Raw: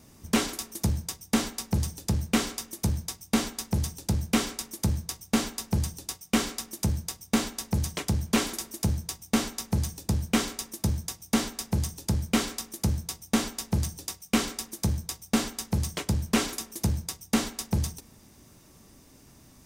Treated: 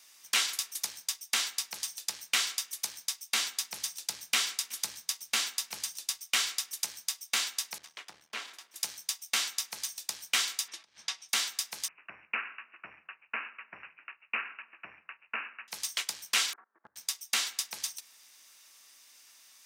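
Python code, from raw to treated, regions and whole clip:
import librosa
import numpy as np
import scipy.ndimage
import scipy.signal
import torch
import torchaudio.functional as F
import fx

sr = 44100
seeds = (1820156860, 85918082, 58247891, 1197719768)

y = fx.chain(x, sr, fx.low_shelf(hz=250.0, db=6.0),
    fx.echo_single(ms=371, db=-23.0), at=(3.35, 6.27))
y = fx.chain(y, sr, fx.halfwave_gain(db=-12.0),
    fx.lowpass(hz=1100.0, slope=6), at=(7.78, 8.76))
y = fx.chain(y, sr, fx.lowpass(hz=3600.0, slope=12),
    fx.over_compress(threshold_db=-34.0, ratio=-0.5), at=(10.68, 11.29))
y = fx.chain(y, sr, fx.lower_of_two(delay_ms=0.74),
    fx.lowpass(hz=3300.0, slope=12),
    fx.resample_bad(factor=8, down='none', up='filtered'), at=(11.88, 15.68))
y = fx.chain(y, sr, fx.steep_lowpass(hz=1600.0, slope=48),
    fx.level_steps(step_db=23), at=(16.53, 16.96))
y = scipy.signal.sosfilt(scipy.signal.butter(2, 1500.0, 'highpass', fs=sr, output='sos'), y)
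y = fx.peak_eq(y, sr, hz=3400.0, db=5.0, octaves=1.9)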